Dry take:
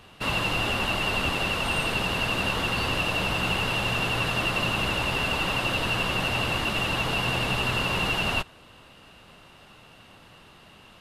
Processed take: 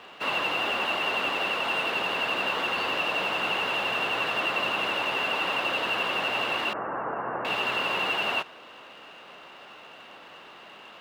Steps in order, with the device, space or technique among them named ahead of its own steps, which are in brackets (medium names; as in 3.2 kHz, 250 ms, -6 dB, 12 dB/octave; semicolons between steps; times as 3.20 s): phone line with mismatched companding (band-pass 390–3300 Hz; companding laws mixed up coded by mu); 6.73–7.45 s: steep low-pass 1.6 kHz 36 dB/octave